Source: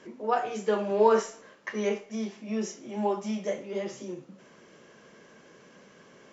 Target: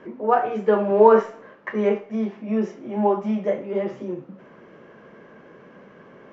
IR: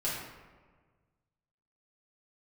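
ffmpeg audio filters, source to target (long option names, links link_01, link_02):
-af "lowpass=1700,volume=8dB"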